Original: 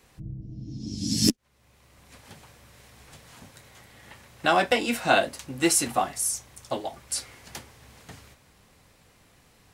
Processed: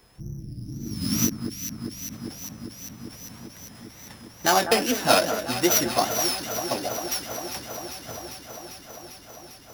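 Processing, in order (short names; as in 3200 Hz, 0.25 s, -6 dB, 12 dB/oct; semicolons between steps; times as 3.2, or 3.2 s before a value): sample sorter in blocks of 8 samples; wow and flutter 130 cents; echo with dull and thin repeats by turns 0.199 s, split 1700 Hz, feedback 88%, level -9 dB; ending taper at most 210 dB/s; gain +1.5 dB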